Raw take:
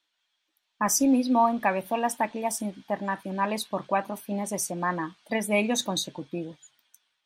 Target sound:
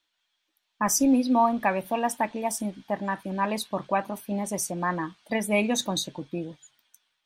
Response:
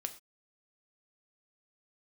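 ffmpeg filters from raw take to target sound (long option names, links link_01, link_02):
-af "lowshelf=frequency=80:gain=9.5"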